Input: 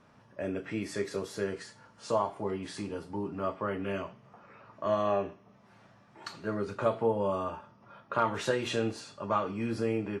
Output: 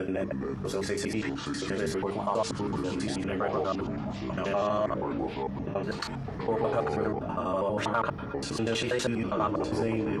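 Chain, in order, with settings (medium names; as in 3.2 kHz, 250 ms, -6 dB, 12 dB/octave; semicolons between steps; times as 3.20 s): slices played last to first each 81 ms, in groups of 8; in parallel at -6 dB: overload inside the chain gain 21.5 dB; on the sum: hum notches 50/100/150/200/250/300/350/400/450 Hz; ever faster or slower copies 205 ms, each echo -6 st, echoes 3, each echo -6 dB; level flattener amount 50%; trim -4.5 dB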